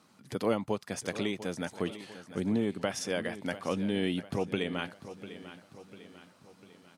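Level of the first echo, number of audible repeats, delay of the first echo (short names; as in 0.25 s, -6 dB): -14.0 dB, 4, 0.697 s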